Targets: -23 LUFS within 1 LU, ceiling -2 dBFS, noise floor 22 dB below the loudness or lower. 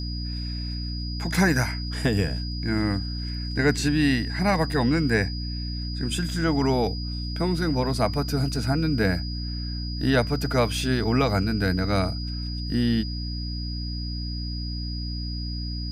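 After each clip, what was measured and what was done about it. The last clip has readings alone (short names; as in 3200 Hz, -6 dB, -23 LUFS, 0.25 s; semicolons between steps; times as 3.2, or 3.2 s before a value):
hum 60 Hz; harmonics up to 300 Hz; hum level -28 dBFS; steady tone 4900 Hz; tone level -36 dBFS; loudness -25.5 LUFS; peak -8.5 dBFS; loudness target -23.0 LUFS
-> notches 60/120/180/240/300 Hz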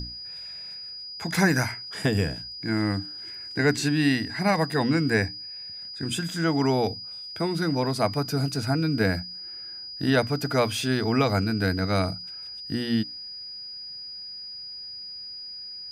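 hum none; steady tone 4900 Hz; tone level -36 dBFS
-> notch 4900 Hz, Q 30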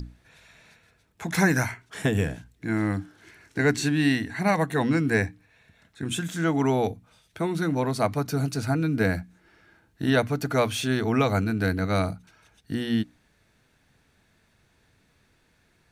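steady tone none; loudness -26.0 LUFS; peak -8.5 dBFS; loudness target -23.0 LUFS
-> gain +3 dB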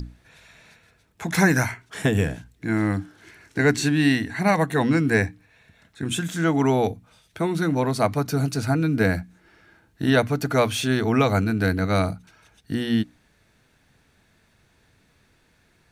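loudness -23.0 LUFS; peak -5.5 dBFS; noise floor -63 dBFS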